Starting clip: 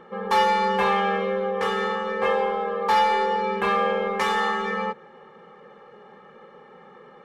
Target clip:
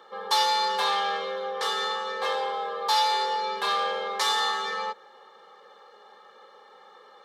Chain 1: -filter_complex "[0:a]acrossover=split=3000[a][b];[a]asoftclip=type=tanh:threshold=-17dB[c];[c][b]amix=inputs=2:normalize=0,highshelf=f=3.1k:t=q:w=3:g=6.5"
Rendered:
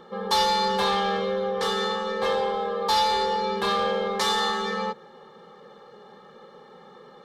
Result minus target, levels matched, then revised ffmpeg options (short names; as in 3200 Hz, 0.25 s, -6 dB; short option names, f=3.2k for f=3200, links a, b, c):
500 Hz band +4.5 dB
-filter_complex "[0:a]acrossover=split=3000[a][b];[a]asoftclip=type=tanh:threshold=-17dB[c];[c][b]amix=inputs=2:normalize=0,highpass=650,highshelf=f=3.1k:t=q:w=3:g=6.5"